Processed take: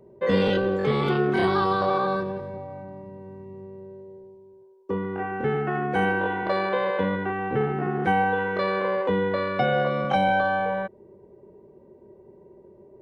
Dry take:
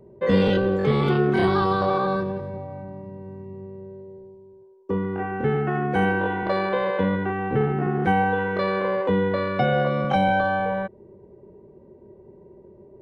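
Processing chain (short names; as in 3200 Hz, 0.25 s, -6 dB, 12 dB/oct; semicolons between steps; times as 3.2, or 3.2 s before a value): low shelf 230 Hz -7 dB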